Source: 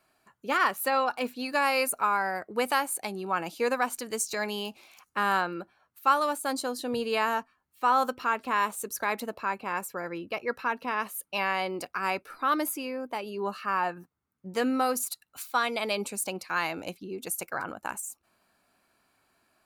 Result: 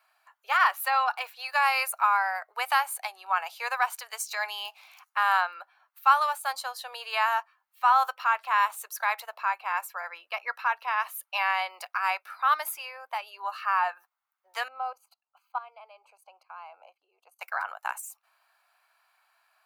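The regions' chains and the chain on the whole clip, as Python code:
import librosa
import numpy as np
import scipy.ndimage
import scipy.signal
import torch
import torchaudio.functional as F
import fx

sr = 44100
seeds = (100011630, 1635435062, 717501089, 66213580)

y = fx.chain(x, sr, fx.moving_average(points=24),
    fx.level_steps(step_db=15), at=(14.68, 17.41))
y = scipy.signal.sosfilt(scipy.signal.butter(6, 730.0, 'highpass', fs=sr, output='sos'), y)
y = fx.peak_eq(y, sr, hz=8000.0, db=-8.0, octaves=1.4)
y = y * 10.0 ** (3.5 / 20.0)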